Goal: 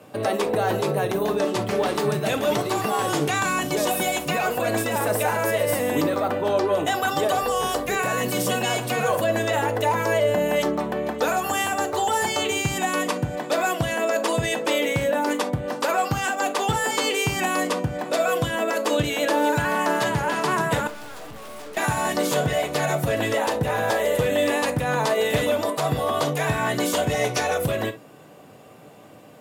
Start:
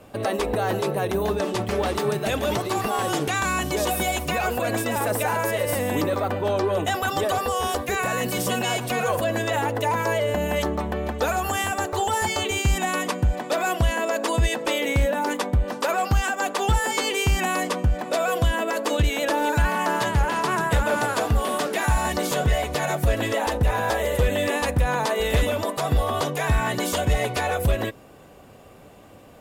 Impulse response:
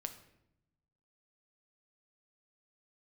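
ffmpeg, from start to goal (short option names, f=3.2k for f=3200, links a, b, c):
-filter_complex "[0:a]highpass=f=110:w=0.5412,highpass=f=110:w=1.3066,asettb=1/sr,asplit=3[a][b][c];[a]atrim=end=7.424[d];[b]atrim=start=7.42:end=7.95,asetpts=PTS-STARTPTS,afade=t=in:d=0.004:c=qsin,afade=t=out:st=0.526:d=0.004:c=qsin,aeval=exprs='val(0)+0.00708*(sin(2*PI*50*n/s)+sin(2*PI*2*50*n/s)/2+sin(2*PI*3*50*n/s)/3+sin(2*PI*4*50*n/s)/4+sin(2*PI*5*50*n/s)/5)':c=same[e];[c]atrim=start=7.946[f];[d][e]acrossfade=d=0.004:c1=hsin:c2=qsin[g];[g][f]acrossfade=d=0.004:c1=qsin:c2=hsin,asettb=1/sr,asplit=3[h][i][j];[h]atrim=end=20.874[k];[i]atrim=start=20.87:end=21.77,asetpts=PTS-STARTPTS,afade=t=in:d=0.004:c=qsin,afade=t=out:st=0.896:d=0.004:c=qsin,aeval=exprs='(tanh(100*val(0)+0.25)-tanh(0.25))/100':c=same[l];[j]atrim=start=21.766[m];[k][l]acrossfade=d=0.004:c1=hsin:c2=qsin[n];[n][m]acrossfade=d=0.004:c1=qsin:c2=hsin,asettb=1/sr,asplit=3[o][p][q];[o]atrim=end=27.134[r];[p]atrim=start=27.13:end=27.59,asetpts=PTS-STARTPTS,afade=t=in:d=0.004:c=qsin,afade=t=out:st=0.456:d=0.004:c=qsin,equalizer=f=5.8k:t=o:w=0.23:g=14[s];[q]atrim=start=27.586[t];[r][s]acrossfade=d=0.004:c1=hsin:c2=qsin[u];[u][t]acrossfade=d=0.004:c1=qsin:c2=hsin[v];[1:a]atrim=start_sample=2205,atrim=end_sample=3087[w];[v][w]afir=irnorm=-1:irlink=0,volume=3.5dB"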